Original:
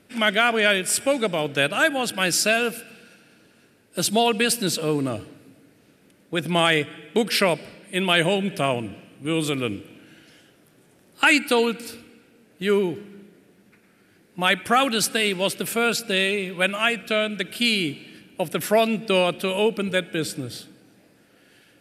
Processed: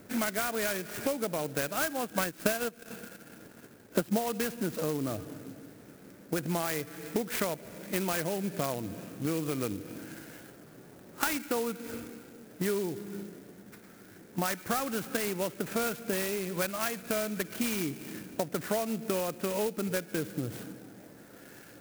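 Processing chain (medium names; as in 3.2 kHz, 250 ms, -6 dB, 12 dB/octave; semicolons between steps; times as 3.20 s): Chebyshev low-pass 1.9 kHz, order 2; compression 6:1, threshold -36 dBFS, peak gain reduction 20 dB; 2.01–4.30 s: transient shaper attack +5 dB, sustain -11 dB; sampling jitter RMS 0.08 ms; trim +6.5 dB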